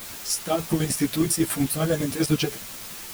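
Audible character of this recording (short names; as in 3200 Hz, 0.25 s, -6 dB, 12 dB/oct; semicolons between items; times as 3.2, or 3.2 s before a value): chopped level 10 Hz, depth 60%, duty 45%; a quantiser's noise floor 6-bit, dither triangular; a shimmering, thickened sound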